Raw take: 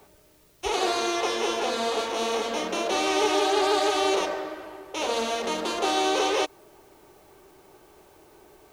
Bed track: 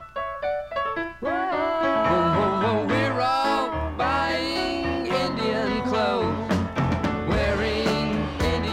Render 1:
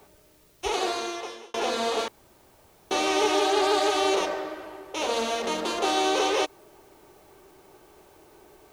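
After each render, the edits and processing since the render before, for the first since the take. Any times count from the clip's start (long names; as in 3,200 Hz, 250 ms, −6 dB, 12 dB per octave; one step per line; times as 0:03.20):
0:00.65–0:01.54: fade out
0:02.08–0:02.91: fill with room tone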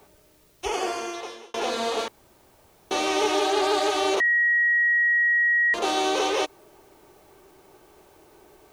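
0:00.65–0:01.14: Butterworth band-reject 3,900 Hz, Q 3.7
0:04.20–0:05.74: beep over 1,900 Hz −17.5 dBFS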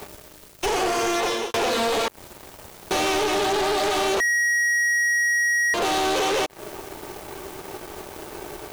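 downward compressor 10 to 1, threshold −31 dBFS, peak gain reduction 13 dB
leveller curve on the samples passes 5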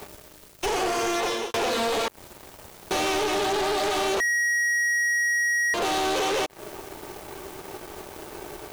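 level −2.5 dB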